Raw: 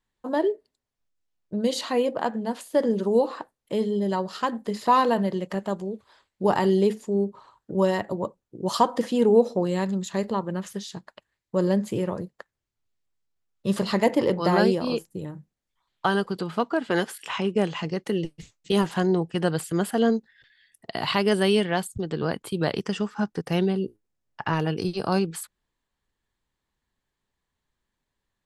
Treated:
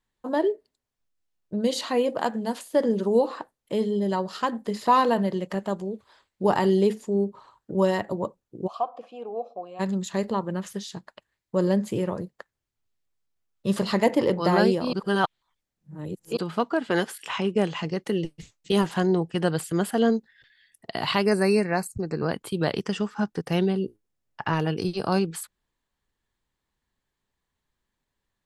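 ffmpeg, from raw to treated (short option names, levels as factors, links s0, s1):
-filter_complex "[0:a]asettb=1/sr,asplit=3[s0][s1][s2];[s0]atrim=end=2.094[s3];[s1]atrim=start=2.09:end=2.59,asetpts=PTS-STARTPTS,afade=t=in:d=0.004:c=qsin,afade=t=out:st=0.496:d=0.004:c=qsin,highshelf=f=4500:g=9.5[s4];[s2]atrim=start=2.586[s5];[s3][s4]acrossfade=d=0.004:c1=hsin:c2=qsin[s6];[s6][s5]acrossfade=d=0.004:c1=qsin:c2=hsin,asplit=3[s7][s8][s9];[s7]afade=t=out:st=8.66:d=0.02[s10];[s8]asplit=3[s11][s12][s13];[s11]bandpass=f=730:t=q:w=8,volume=1[s14];[s12]bandpass=f=1090:t=q:w=8,volume=0.501[s15];[s13]bandpass=f=2440:t=q:w=8,volume=0.355[s16];[s14][s15][s16]amix=inputs=3:normalize=0,afade=t=in:st=8.66:d=0.02,afade=t=out:st=9.79:d=0.02[s17];[s9]afade=t=in:st=9.79:d=0.02[s18];[s10][s17][s18]amix=inputs=3:normalize=0,asplit=3[s19][s20][s21];[s19]afade=t=out:st=21.24:d=0.02[s22];[s20]asuperstop=centerf=3300:order=20:qfactor=2.7,afade=t=in:st=21.24:d=0.02,afade=t=out:st=22.27:d=0.02[s23];[s21]afade=t=in:st=22.27:d=0.02[s24];[s22][s23][s24]amix=inputs=3:normalize=0,asplit=3[s25][s26][s27];[s25]atrim=end=14.932[s28];[s26]atrim=start=14.928:end=16.372,asetpts=PTS-STARTPTS,areverse[s29];[s27]atrim=start=16.368[s30];[s28][s29]acrossfade=d=0.004:c1=hsin:c2=hsin[s31];[s31][s30]acrossfade=d=0.004:c1=hsin:c2=hsin"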